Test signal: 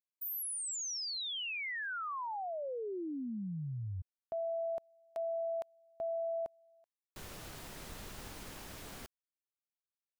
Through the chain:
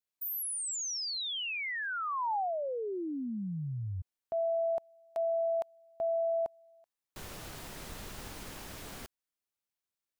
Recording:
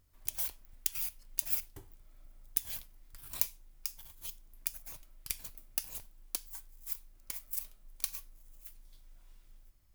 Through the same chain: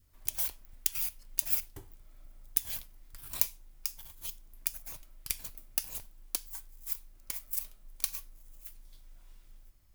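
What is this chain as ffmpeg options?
-af "adynamicequalizer=threshold=0.00316:dfrequency=840:dqfactor=1.9:tfrequency=840:tqfactor=1.9:attack=5:release=100:ratio=0.375:range=2.5:mode=boostabove:tftype=bell,volume=3dB"

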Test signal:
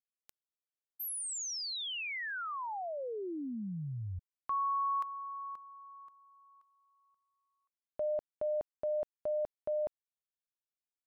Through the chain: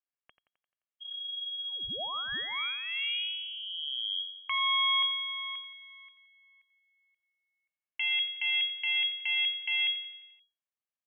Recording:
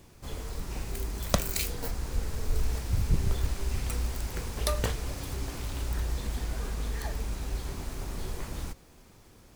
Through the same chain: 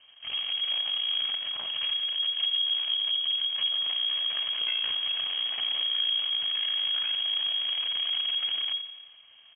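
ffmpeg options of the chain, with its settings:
-af "aecho=1:1:1.9:0.39,acompressor=threshold=-30dB:ratio=16:attack=1.5:release=103:knee=1:detection=rms,aeval=exprs='0.106*(cos(1*acos(clip(val(0)/0.106,-1,1)))-cos(1*PI/2))+0.0376*(cos(6*acos(clip(val(0)/0.106,-1,1)))-cos(6*PI/2))+0.00237*(cos(7*acos(clip(val(0)/0.106,-1,1)))-cos(7*PI/2))':c=same,aecho=1:1:87|174|261|348|435|522:0.251|0.143|0.0816|0.0465|0.0265|0.0151,lowpass=f=2.8k:t=q:w=0.5098,lowpass=f=2.8k:t=q:w=0.6013,lowpass=f=2.8k:t=q:w=0.9,lowpass=f=2.8k:t=q:w=2.563,afreqshift=-3300"

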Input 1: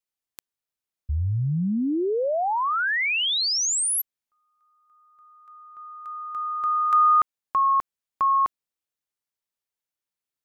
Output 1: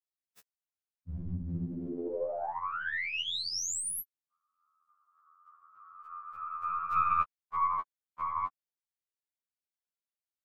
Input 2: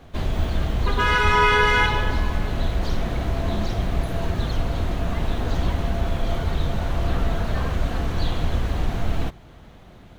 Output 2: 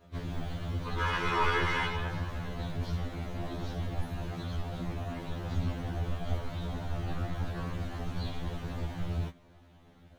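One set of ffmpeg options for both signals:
-af "afftfilt=real='hypot(re,im)*cos(2*PI*random(0))':imag='hypot(re,im)*sin(2*PI*random(1))':win_size=512:overlap=0.75,aeval=exprs='0.282*(cos(1*acos(clip(val(0)/0.282,-1,1)))-cos(1*PI/2))+0.0562*(cos(2*acos(clip(val(0)/0.282,-1,1)))-cos(2*PI/2))+0.00178*(cos(5*acos(clip(val(0)/0.282,-1,1)))-cos(5*PI/2))':c=same,afftfilt=real='re*2*eq(mod(b,4),0)':imag='im*2*eq(mod(b,4),0)':win_size=2048:overlap=0.75,volume=-3.5dB"

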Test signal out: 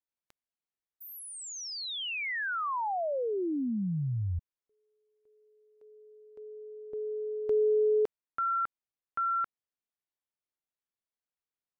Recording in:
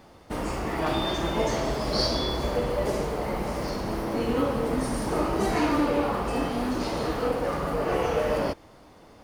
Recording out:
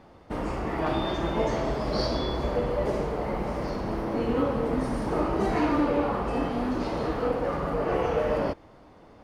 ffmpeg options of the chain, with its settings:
-af "lowpass=f=2.1k:p=1"

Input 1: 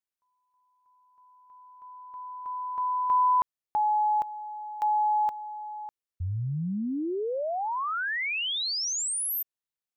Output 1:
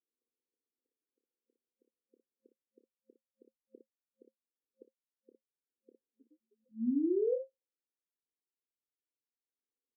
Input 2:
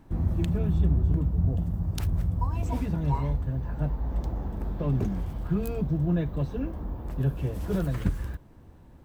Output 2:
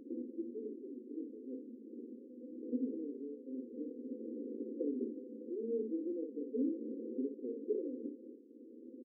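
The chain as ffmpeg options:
-af "aecho=1:1:28|58:0.355|0.501,acompressor=threshold=-35dB:ratio=6:attack=27:release=667:detection=rms,afftfilt=real='re*between(b*sr/4096,220,530)':imag='im*between(b*sr/4096,220,530)':win_size=4096:overlap=0.75,volume=7.5dB"

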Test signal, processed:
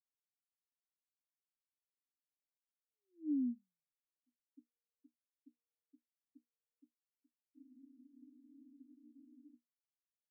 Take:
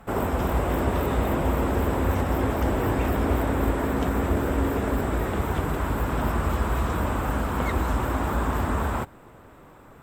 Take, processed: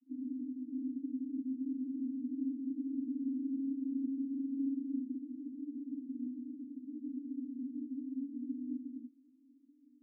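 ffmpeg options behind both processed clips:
-af "asuperpass=centerf=270:order=12:qfactor=4,volume=-5dB"

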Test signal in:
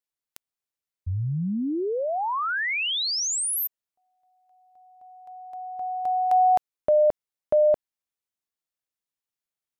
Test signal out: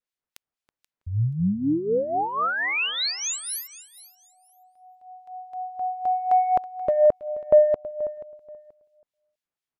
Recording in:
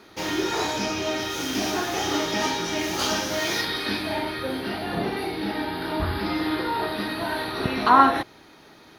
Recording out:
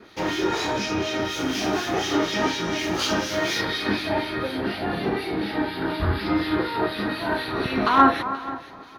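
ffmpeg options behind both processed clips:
-filter_complex "[0:a]asplit=2[a][b];[b]adelay=325,lowpass=f=4.9k:p=1,volume=-15.5dB,asplit=2[c][d];[d]adelay=325,lowpass=f=4.9k:p=1,volume=0.16[e];[c][e]amix=inputs=2:normalize=0[f];[a][f]amix=inputs=2:normalize=0,acontrast=53,adynamicequalizer=threshold=0.0251:dfrequency=830:dqfactor=2.7:tfrequency=830:tqfactor=2.7:attack=5:release=100:ratio=0.375:range=3:mode=cutabove:tftype=bell,acrossover=split=1900[g][h];[g]aeval=exprs='val(0)*(1-0.7/2+0.7/2*cos(2*PI*4.1*n/s))':c=same[i];[h]aeval=exprs='val(0)*(1-0.7/2-0.7/2*cos(2*PI*4.1*n/s))':c=same[j];[i][j]amix=inputs=2:normalize=0,highshelf=f=5.8k:g=-11,asplit=2[k][l];[l]aecho=0:1:481|962:0.126|0.0315[m];[k][m]amix=inputs=2:normalize=0"

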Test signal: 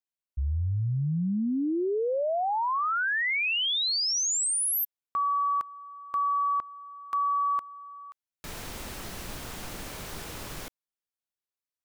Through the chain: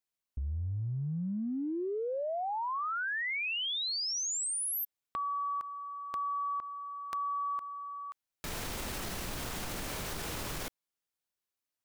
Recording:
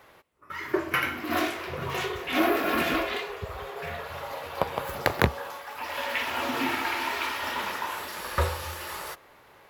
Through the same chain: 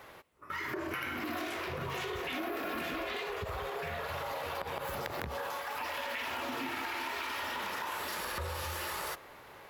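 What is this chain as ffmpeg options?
-af "acompressor=threshold=-35dB:ratio=10:attack=1.3:release=82:knee=1:detection=peak,volume=2.5dB"

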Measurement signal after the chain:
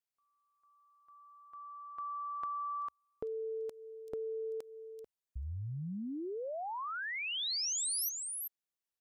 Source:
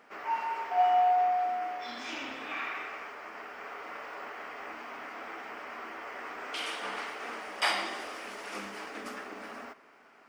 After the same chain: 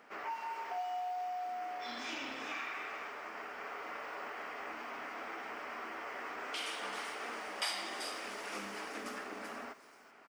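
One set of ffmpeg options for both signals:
-filter_complex "[0:a]equalizer=f=70:t=o:w=0.28:g=-2,acrossover=split=4100[a][b];[a]acompressor=threshold=-37dB:ratio=6[c];[b]aecho=1:1:386:0.562[d];[c][d]amix=inputs=2:normalize=0,volume=-1dB"

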